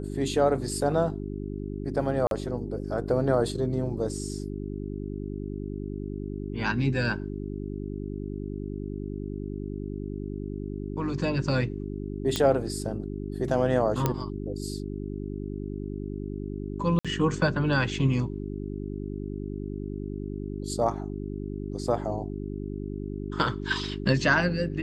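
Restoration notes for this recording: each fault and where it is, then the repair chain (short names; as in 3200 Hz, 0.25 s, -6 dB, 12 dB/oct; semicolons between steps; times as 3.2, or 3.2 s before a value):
hum 50 Hz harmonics 8 -34 dBFS
2.27–2.31 gap 42 ms
12.36 pop -11 dBFS
14.06 pop -10 dBFS
16.99–17.05 gap 56 ms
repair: de-click; de-hum 50 Hz, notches 8; interpolate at 2.27, 42 ms; interpolate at 16.99, 56 ms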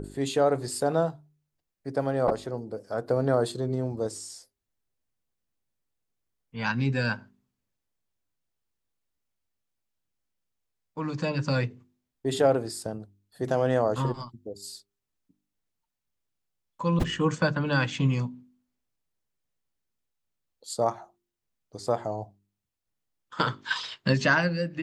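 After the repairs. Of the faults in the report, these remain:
none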